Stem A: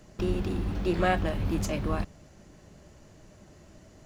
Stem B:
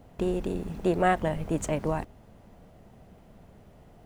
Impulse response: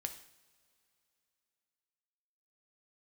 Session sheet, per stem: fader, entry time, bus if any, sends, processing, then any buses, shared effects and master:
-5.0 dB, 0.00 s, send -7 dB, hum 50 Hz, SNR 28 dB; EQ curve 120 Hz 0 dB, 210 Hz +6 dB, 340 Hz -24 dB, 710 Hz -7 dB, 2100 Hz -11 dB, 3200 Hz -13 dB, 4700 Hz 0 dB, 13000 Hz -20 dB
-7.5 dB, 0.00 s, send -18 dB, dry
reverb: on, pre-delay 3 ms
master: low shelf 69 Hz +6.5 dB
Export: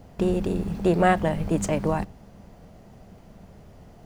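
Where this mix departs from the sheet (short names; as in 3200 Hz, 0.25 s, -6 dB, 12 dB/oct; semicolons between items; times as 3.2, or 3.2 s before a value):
stem B -7.5 dB -> +3.0 dB; master: missing low shelf 69 Hz +6.5 dB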